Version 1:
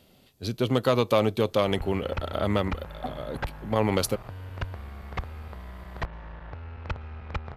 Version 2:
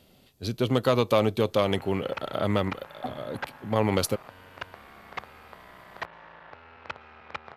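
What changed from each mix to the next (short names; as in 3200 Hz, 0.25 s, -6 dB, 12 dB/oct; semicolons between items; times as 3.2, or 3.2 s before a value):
background: add weighting filter A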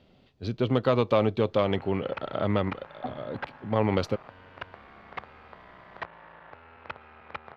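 master: add air absorption 210 m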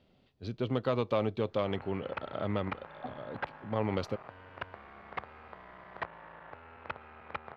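speech -7.0 dB; background: add high shelf 4200 Hz -8.5 dB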